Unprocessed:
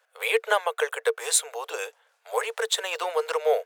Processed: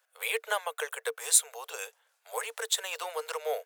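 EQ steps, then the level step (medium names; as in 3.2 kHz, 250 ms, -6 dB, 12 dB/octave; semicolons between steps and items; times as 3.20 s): Bessel high-pass 510 Hz; treble shelf 6.1 kHz +11 dB; -7.0 dB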